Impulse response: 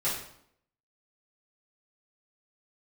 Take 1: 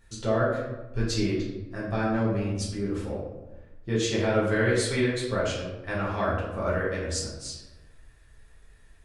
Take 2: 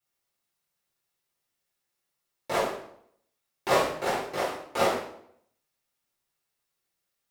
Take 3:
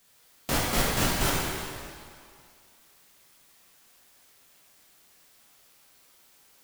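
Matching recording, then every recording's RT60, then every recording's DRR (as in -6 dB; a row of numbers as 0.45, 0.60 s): 2; 1.1, 0.70, 2.2 s; -7.5, -11.5, -5.5 dB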